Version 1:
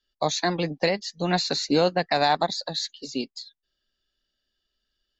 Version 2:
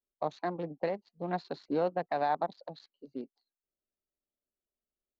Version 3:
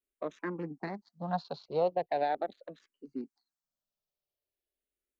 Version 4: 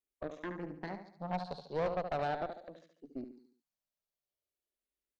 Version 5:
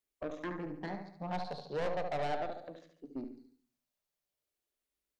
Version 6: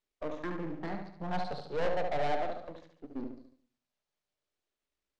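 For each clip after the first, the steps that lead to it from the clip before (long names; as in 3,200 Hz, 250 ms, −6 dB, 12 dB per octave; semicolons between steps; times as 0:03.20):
adaptive Wiener filter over 25 samples; low-pass filter 1,000 Hz 12 dB per octave; spectral tilt +3 dB per octave; level −4.5 dB
frequency shifter mixed with the dry sound −0.41 Hz; level +2.5 dB
on a send: repeating echo 72 ms, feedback 45%, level −8 dB; on the sum: tube saturation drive 28 dB, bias 0.75
soft clipping −33.5 dBFS, distortion −10 dB; convolution reverb RT60 0.40 s, pre-delay 7 ms, DRR 12.5 dB; level +3 dB
gain on one half-wave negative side −12 dB; high-frequency loss of the air 80 metres; level +6.5 dB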